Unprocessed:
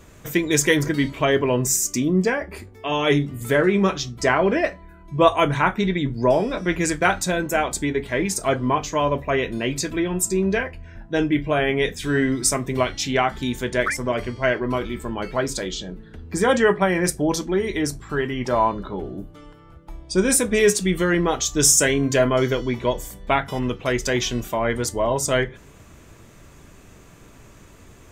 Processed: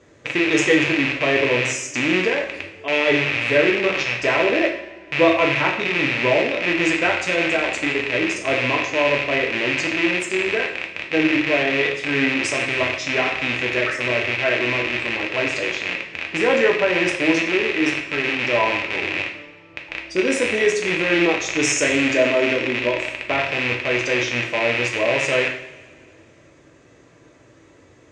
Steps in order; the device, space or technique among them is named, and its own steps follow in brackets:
0:21.95–0:23.18: comb filter 3.3 ms, depth 44%
car door speaker with a rattle (loose part that buzzes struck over −35 dBFS, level −6 dBFS; loudspeaker in its box 93–6,900 Hz, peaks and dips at 190 Hz −7 dB, 320 Hz +10 dB, 550 Hz +9 dB, 1,900 Hz +6 dB)
coupled-rooms reverb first 0.63 s, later 2.3 s, from −19 dB, DRR 0.5 dB
level −7 dB

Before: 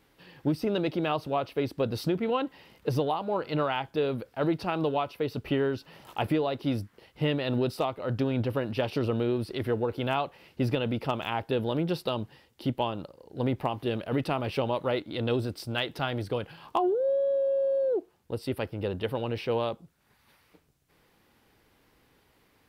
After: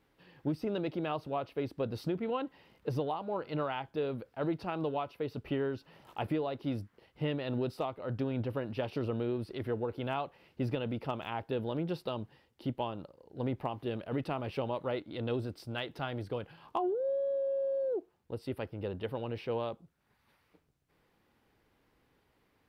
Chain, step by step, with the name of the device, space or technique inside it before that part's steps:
behind a face mask (high-shelf EQ 3,400 Hz −7 dB)
level −6 dB

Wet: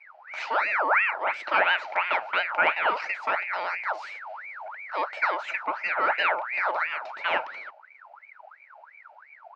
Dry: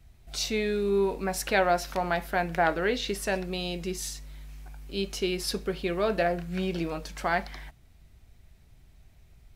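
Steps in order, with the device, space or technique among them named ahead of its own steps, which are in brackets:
voice changer toy (ring modulator whose carrier an LFO sweeps 1,500 Hz, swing 55%, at 2.9 Hz; loudspeaker in its box 470–3,900 Hz, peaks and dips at 610 Hz +10 dB, 880 Hz +9 dB, 1,400 Hz +8 dB, 2,300 Hz +7 dB, 3,400 Hz −9 dB)

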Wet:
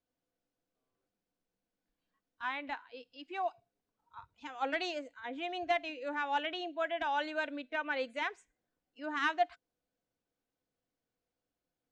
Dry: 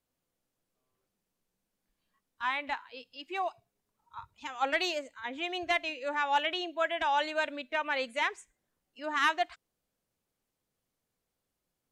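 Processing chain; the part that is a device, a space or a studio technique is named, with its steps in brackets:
inside a cardboard box (low-pass filter 6,000 Hz 12 dB per octave; hollow resonant body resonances 290/490/700/1,500 Hz, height 8 dB)
level −6.5 dB

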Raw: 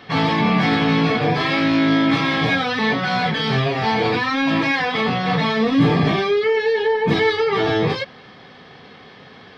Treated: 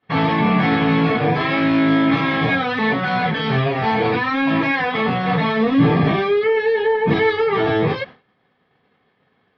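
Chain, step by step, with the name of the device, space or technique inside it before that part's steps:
hearing-loss simulation (low-pass filter 2,800 Hz 12 dB per octave; downward expander −30 dBFS)
level +1 dB

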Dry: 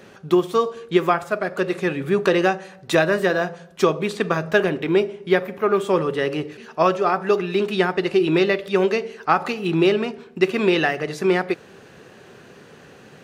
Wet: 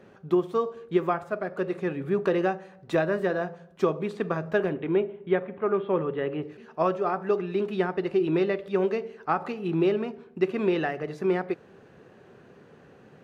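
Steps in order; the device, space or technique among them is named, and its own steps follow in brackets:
0:04.73–0:06.43: Butterworth low-pass 3,700 Hz 48 dB per octave
through cloth (high-shelf EQ 2,300 Hz −14 dB)
level −5.5 dB

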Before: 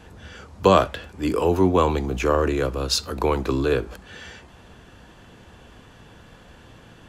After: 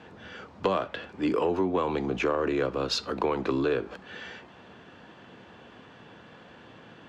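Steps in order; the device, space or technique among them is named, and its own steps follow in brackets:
AM radio (band-pass filter 170–3,700 Hz; downward compressor 10 to 1, threshold −21 dBFS, peak gain reduction 11.5 dB; soft clipping −13 dBFS, distortion −25 dB)

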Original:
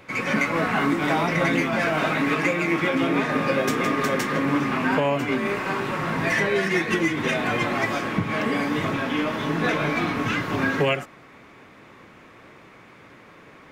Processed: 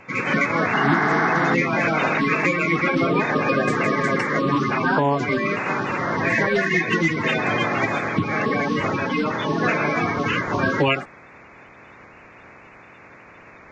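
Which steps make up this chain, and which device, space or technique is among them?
clip after many re-uploads (low-pass filter 6,300 Hz 24 dB per octave; spectral magnitudes quantised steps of 30 dB)
healed spectral selection 0:00.80–0:01.51, 520–2,500 Hz before
level +3 dB

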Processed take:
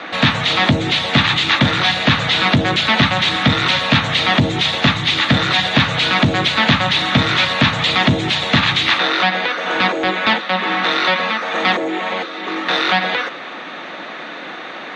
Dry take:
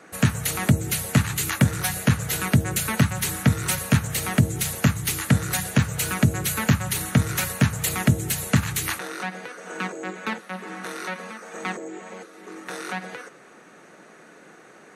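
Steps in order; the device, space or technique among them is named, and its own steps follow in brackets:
overdrive pedal into a guitar cabinet (mid-hump overdrive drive 27 dB, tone 7,100 Hz, clips at −6 dBFS; loudspeaker in its box 81–4,000 Hz, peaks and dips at 270 Hz +4 dB, 420 Hz −8 dB, 1,500 Hz −5 dB, 3,600 Hz +10 dB)
level +2 dB

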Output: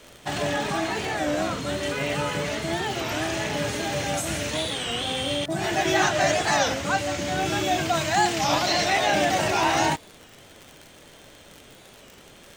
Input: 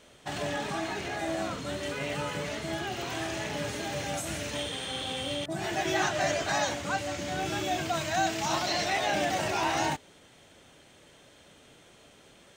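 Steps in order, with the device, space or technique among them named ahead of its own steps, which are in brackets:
warped LP (wow of a warped record 33 1/3 rpm, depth 160 cents; surface crackle 71 per second −39 dBFS; pink noise bed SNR 33 dB)
level +6.5 dB

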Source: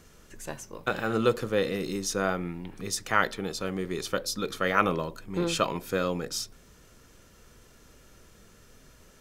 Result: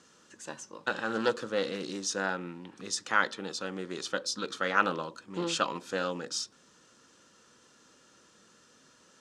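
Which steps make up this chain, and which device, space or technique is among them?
full-range speaker at full volume (highs frequency-modulated by the lows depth 0.24 ms; loudspeaker in its box 270–8,300 Hz, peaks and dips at 410 Hz −7 dB, 670 Hz −8 dB, 2,200 Hz −8 dB)

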